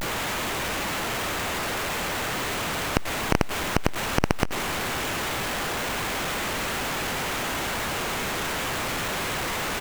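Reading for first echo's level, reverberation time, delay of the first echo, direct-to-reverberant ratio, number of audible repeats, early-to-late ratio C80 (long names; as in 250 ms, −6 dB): −18.5 dB, no reverb audible, 269 ms, no reverb audible, 3, no reverb audible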